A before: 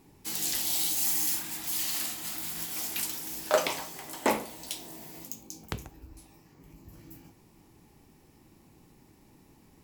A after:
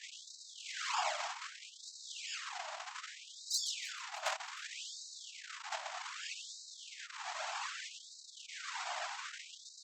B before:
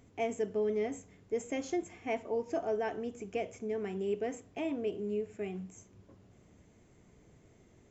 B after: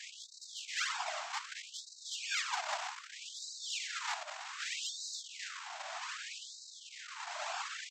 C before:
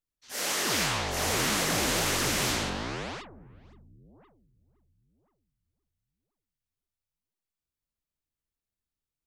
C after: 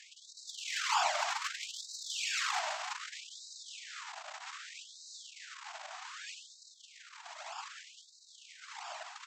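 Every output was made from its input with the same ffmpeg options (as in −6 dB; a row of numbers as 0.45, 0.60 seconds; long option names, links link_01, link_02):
-af "aeval=exprs='val(0)+0.5*0.0398*sgn(val(0))':channel_layout=same,aresample=16000,acrusher=samples=39:mix=1:aa=0.000001:lfo=1:lforange=62.4:lforate=0.76,aresample=44100,asoftclip=type=tanh:threshold=-16.5dB,afftfilt=real='hypot(re,im)*cos(2*PI*random(0))':imag='hypot(re,im)*sin(2*PI*random(1))':win_size=512:overlap=0.75,highpass=frequency=54:poles=1,aecho=1:1:310|620|930:0.158|0.0602|0.0229,areverse,acompressor=mode=upward:threshold=-41dB:ratio=2.5,areverse,afftfilt=real='re*gte(b*sr/1024,590*pow(3800/590,0.5+0.5*sin(2*PI*0.64*pts/sr)))':imag='im*gte(b*sr/1024,590*pow(3800/590,0.5+0.5*sin(2*PI*0.64*pts/sr)))':win_size=1024:overlap=0.75,volume=8dB"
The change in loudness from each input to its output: −12.0, −3.5, −11.0 LU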